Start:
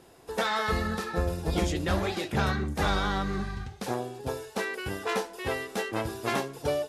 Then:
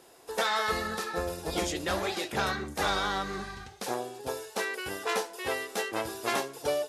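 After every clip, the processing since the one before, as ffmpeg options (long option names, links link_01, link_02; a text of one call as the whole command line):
ffmpeg -i in.wav -af "bass=frequency=250:gain=-12,treble=frequency=4000:gain=4" out.wav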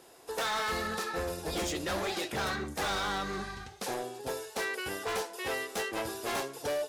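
ffmpeg -i in.wav -af "volume=29dB,asoftclip=hard,volume=-29dB" out.wav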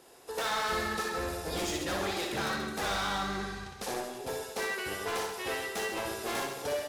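ffmpeg -i in.wav -af "aecho=1:1:60|132|218.4|322.1|446.5:0.631|0.398|0.251|0.158|0.1,volume=-1.5dB" out.wav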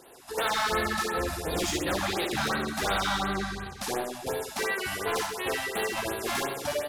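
ffmpeg -i in.wav -af "afftfilt=real='re*(1-between(b*sr/1024,370*pow(6800/370,0.5+0.5*sin(2*PI*2.8*pts/sr))/1.41,370*pow(6800/370,0.5+0.5*sin(2*PI*2.8*pts/sr))*1.41))':imag='im*(1-between(b*sr/1024,370*pow(6800/370,0.5+0.5*sin(2*PI*2.8*pts/sr))/1.41,370*pow(6800/370,0.5+0.5*sin(2*PI*2.8*pts/sr))*1.41))':win_size=1024:overlap=0.75,volume=5dB" out.wav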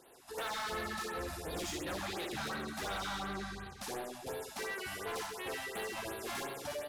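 ffmpeg -i in.wav -af "asoftclip=type=tanh:threshold=-25.5dB,volume=-8dB" out.wav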